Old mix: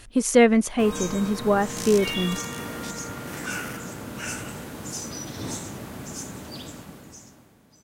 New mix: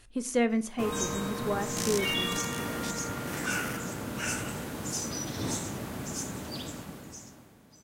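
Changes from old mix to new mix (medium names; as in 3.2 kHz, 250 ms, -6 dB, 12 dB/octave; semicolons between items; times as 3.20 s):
speech -11.5 dB; reverb: on, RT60 0.40 s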